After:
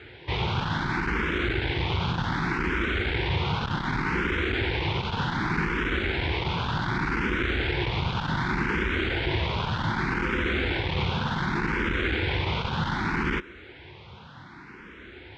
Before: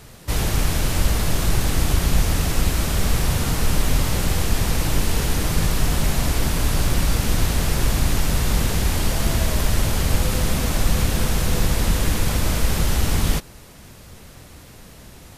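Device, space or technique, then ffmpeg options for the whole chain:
barber-pole phaser into a guitar amplifier: -filter_complex "[0:a]asplit=2[s0][s1];[s1]afreqshift=0.66[s2];[s0][s2]amix=inputs=2:normalize=1,asoftclip=type=tanh:threshold=0.158,highpass=77,equalizer=f=360:t=q:w=4:g=9,equalizer=f=620:t=q:w=4:g=-8,equalizer=f=930:t=q:w=4:g=8,equalizer=f=1500:t=q:w=4:g=10,equalizer=f=2200:t=q:w=4:g=8,equalizer=f=3400:t=q:w=4:g=5,lowpass=f=3700:w=0.5412,lowpass=f=3700:w=1.3066"

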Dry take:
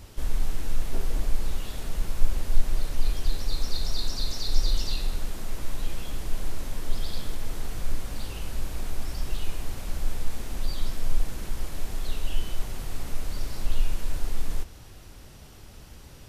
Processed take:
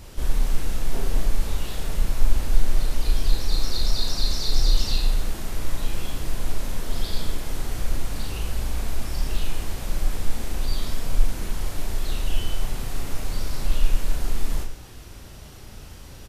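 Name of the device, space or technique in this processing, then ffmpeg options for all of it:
slapback doubling: -filter_complex "[0:a]asplit=3[s0][s1][s2];[s1]adelay=36,volume=0.708[s3];[s2]adelay=110,volume=0.316[s4];[s0][s3][s4]amix=inputs=3:normalize=0,volume=1.41"

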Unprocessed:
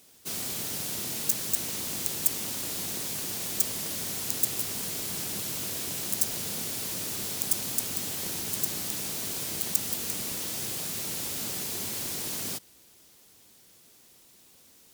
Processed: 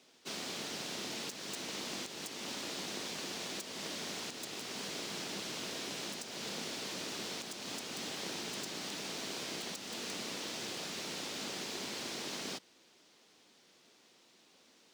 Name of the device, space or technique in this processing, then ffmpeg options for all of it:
DJ mixer with the lows and highs turned down: -filter_complex "[0:a]acrossover=split=180 6000:gain=0.0891 1 0.0631[s0][s1][s2];[s0][s1][s2]amix=inputs=3:normalize=0,alimiter=level_in=1.33:limit=0.0631:level=0:latency=1:release=231,volume=0.75,volume=0.891"

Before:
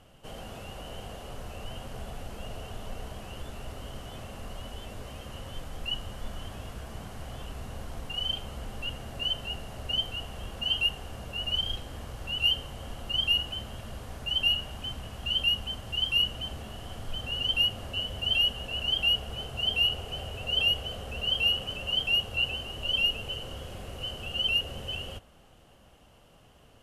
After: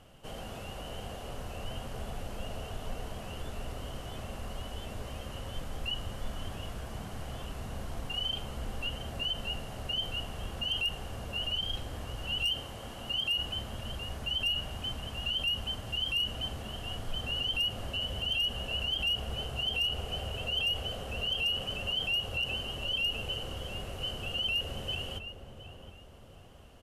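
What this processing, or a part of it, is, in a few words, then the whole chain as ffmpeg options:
clipper into limiter: -filter_complex "[0:a]asettb=1/sr,asplit=3[s0][s1][s2];[s0]atrim=end=12.574[s3];[s1]atrim=start=12.57:end=13.39,asetpts=PTS-STARTPTS,afade=t=in:d=0.004:c=qsin,afade=t=out:st=0.816:d=0.004:c=qsin,highpass=f=160:p=1[s4];[s2]atrim=start=13.386[s5];[s3][s4]acrossfade=d=0.004:c1=hsin:c2=qsin[s6];[s6][s5]acrossfade=d=0.004:c1=qsin:c2=hsin,asplit=2[s7][s8];[s8]adelay=714,lowpass=f=1100:p=1,volume=0.355,asplit=2[s9][s10];[s10]adelay=714,lowpass=f=1100:p=1,volume=0.49,asplit=2[s11][s12];[s12]adelay=714,lowpass=f=1100:p=1,volume=0.49,asplit=2[s13][s14];[s14]adelay=714,lowpass=f=1100:p=1,volume=0.49,asplit=2[s15][s16];[s16]adelay=714,lowpass=f=1100:p=1,volume=0.49,asplit=2[s17][s18];[s18]adelay=714,lowpass=f=1100:p=1,volume=0.49[s19];[s7][s9][s11][s13][s15][s17][s19]amix=inputs=7:normalize=0,asoftclip=type=hard:threshold=0.106,alimiter=level_in=1.12:limit=0.0631:level=0:latency=1:release=40,volume=0.891"

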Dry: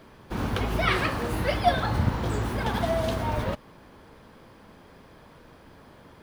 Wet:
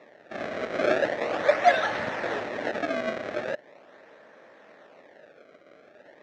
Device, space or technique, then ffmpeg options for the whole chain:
circuit-bent sampling toy: -filter_complex "[0:a]asettb=1/sr,asplit=3[s0][s1][s2];[s0]atrim=end=0.744[s3];[s1]atrim=start=0.74:end=2.4,asetpts=PTS-STARTPTS,afade=t=in:d=0.004:c=qsin,afade=t=out:st=1.656:d=0.004:c=qsin,aemphasis=mode=production:type=75kf[s4];[s2]atrim=start=2.396[s5];[s3][s4]acrossfade=d=0.004:c1=hsin:c2=qsin[s6];[s6][s5]acrossfade=d=0.004:c1=qsin:c2=hsin,acrusher=samples=28:mix=1:aa=0.000001:lfo=1:lforange=44.8:lforate=0.4,highpass=400,equalizer=f=600:t=q:w=4:g=9,equalizer=f=1000:t=q:w=4:g=-5,equalizer=f=1800:t=q:w=4:g=8,equalizer=f=3100:t=q:w=4:g=-5,equalizer=f=4700:t=q:w=4:g=-8,lowpass=f=4800:w=0.5412,lowpass=f=4800:w=1.3066"

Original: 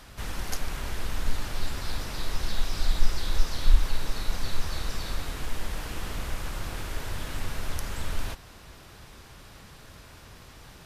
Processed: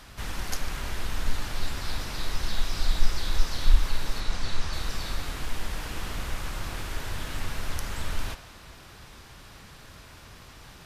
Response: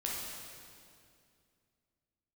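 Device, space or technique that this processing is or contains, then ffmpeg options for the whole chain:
filtered reverb send: -filter_complex "[0:a]asplit=2[s0][s1];[s1]highpass=f=470:w=0.5412,highpass=f=470:w=1.3066,lowpass=8400[s2];[1:a]atrim=start_sample=2205[s3];[s2][s3]afir=irnorm=-1:irlink=0,volume=0.251[s4];[s0][s4]amix=inputs=2:normalize=0,asettb=1/sr,asplit=3[s5][s6][s7];[s5]atrim=end=4.204[s8];[s6]atrim=start=4.2:end=4.73,asetpts=PTS-STARTPTS,afade=t=in:d=0.004:c=qsin,afade=t=out:st=0.526:d=0.004:c=qsin,lowpass=8400[s9];[s7]atrim=start=4.726[s10];[s8][s9]acrossfade=d=0.004:c1=hsin:c2=qsin[s11];[s11][s10]acrossfade=d=0.004:c1=qsin:c2=hsin"

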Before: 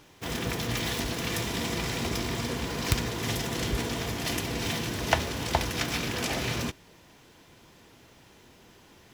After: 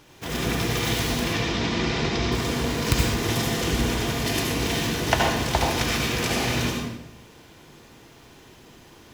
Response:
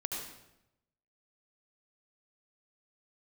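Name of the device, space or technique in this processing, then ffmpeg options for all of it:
bathroom: -filter_complex "[0:a]asettb=1/sr,asplit=3[s0][s1][s2];[s0]atrim=end=1.244[s3];[s1]atrim=start=1.24:end=2.32,asetpts=PTS-STARTPTS,afade=t=in:d=0.004:c=qsin,afade=t=out:st=1.076:d=0.004:c=qsin,lowpass=f=5700:w=0.5412,lowpass=f=5700:w=1.3066[s4];[s2]atrim=start=2.316[s5];[s3][s4]acrossfade=d=0.004:c1=hsin:c2=qsin[s6];[s6][s5]acrossfade=d=0.004:c1=qsin:c2=hsin[s7];[1:a]atrim=start_sample=2205[s8];[s7][s8]afir=irnorm=-1:irlink=0,volume=1.5"

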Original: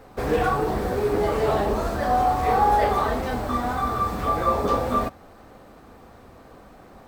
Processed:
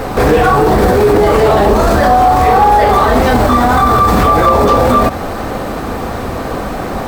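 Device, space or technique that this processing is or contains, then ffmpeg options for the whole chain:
loud club master: -af "acompressor=threshold=0.0631:ratio=2,asoftclip=type=hard:threshold=0.133,alimiter=level_in=28.2:limit=0.891:release=50:level=0:latency=1,volume=0.891"

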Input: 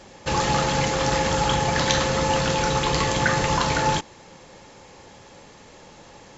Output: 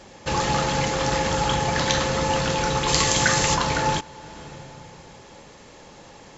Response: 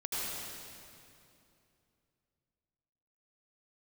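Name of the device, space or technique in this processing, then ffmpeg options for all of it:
ducked reverb: -filter_complex "[0:a]asplit=3[s0][s1][s2];[1:a]atrim=start_sample=2205[s3];[s1][s3]afir=irnorm=-1:irlink=0[s4];[s2]apad=whole_len=281051[s5];[s4][s5]sidechaincompress=threshold=0.0126:ratio=6:attack=7:release=355,volume=0.237[s6];[s0][s6]amix=inputs=2:normalize=0,asplit=3[s7][s8][s9];[s7]afade=t=out:st=2.87:d=0.02[s10];[s8]aemphasis=mode=production:type=75kf,afade=t=in:st=2.87:d=0.02,afade=t=out:st=3.54:d=0.02[s11];[s9]afade=t=in:st=3.54:d=0.02[s12];[s10][s11][s12]amix=inputs=3:normalize=0,volume=0.891"

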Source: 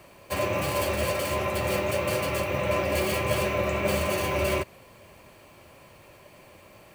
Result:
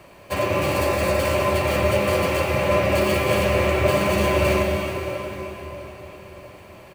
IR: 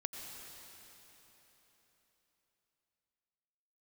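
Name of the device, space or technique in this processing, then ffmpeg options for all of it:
swimming-pool hall: -filter_complex "[0:a]asettb=1/sr,asplit=3[s0][s1][s2];[s0]atrim=end=0.724[s3];[s1]atrim=start=0.72:end=1.2,asetpts=PTS-STARTPTS,afade=t=in:d=0.004:c=qsin,afade=t=out:st=0.476:d=0.004:c=qsin,bandreject=f=3100:w=6.4[s4];[s2]atrim=start=1.196[s5];[s3][s4]acrossfade=d=0.004:c1=hsin:c2=qsin[s6];[s6][s5]acrossfade=d=0.004:c1=qsin:c2=hsin[s7];[1:a]atrim=start_sample=2205[s8];[s7][s8]afir=irnorm=-1:irlink=0,highshelf=f=5200:g=-6,asplit=2[s9][s10];[s10]adelay=650,lowpass=f=2000:p=1,volume=0.178,asplit=2[s11][s12];[s12]adelay=650,lowpass=f=2000:p=1,volume=0.47,asplit=2[s13][s14];[s14]adelay=650,lowpass=f=2000:p=1,volume=0.47,asplit=2[s15][s16];[s16]adelay=650,lowpass=f=2000:p=1,volume=0.47[s17];[s9][s11][s13][s15][s17]amix=inputs=5:normalize=0,volume=2.24"

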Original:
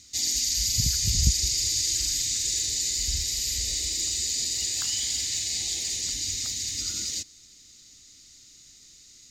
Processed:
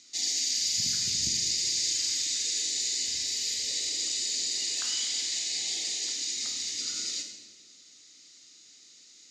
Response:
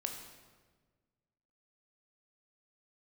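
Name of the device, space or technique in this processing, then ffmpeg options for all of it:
supermarket ceiling speaker: -filter_complex "[0:a]highpass=310,lowpass=6500[s0];[1:a]atrim=start_sample=2205[s1];[s0][s1]afir=irnorm=-1:irlink=0,asettb=1/sr,asplit=3[s2][s3][s4];[s2]atrim=end=5.944[s5];[s3]atrim=start=5.94:end=6.37,asetpts=PTS-STARTPTS,afade=t=in:d=0.004:c=qsin,afade=t=out:st=0.426:d=0.004:c=qsin,highpass=f=190:w=0.5412,highpass=f=190:w=1.3066[s6];[s4]atrim=start=6.366[s7];[s5][s6]acrossfade=d=0.004:c1=hsin:c2=qsin[s8];[s8][s7]acrossfade=d=0.004:c1=qsin:c2=hsin"

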